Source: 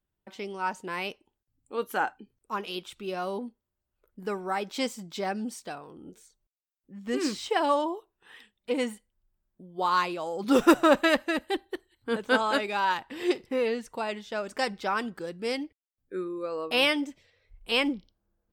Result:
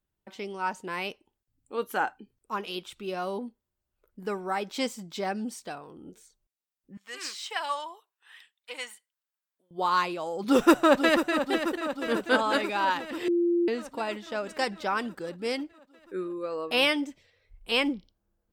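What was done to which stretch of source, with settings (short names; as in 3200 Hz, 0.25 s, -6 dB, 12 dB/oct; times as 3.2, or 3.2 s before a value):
6.97–9.71 HPF 1200 Hz
10.48–11.46 echo throw 0.49 s, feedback 70%, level -9 dB
13.28–13.68 bleep 345 Hz -21 dBFS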